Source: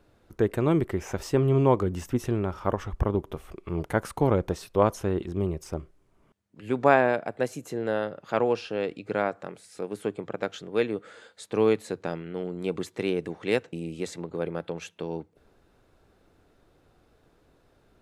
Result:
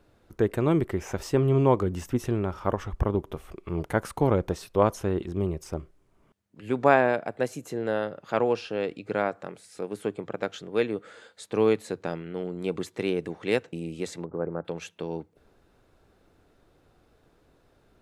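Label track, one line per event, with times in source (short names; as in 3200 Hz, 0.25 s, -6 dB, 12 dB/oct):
14.250000	14.650000	inverse Chebyshev low-pass stop band from 3800 Hz, stop band 50 dB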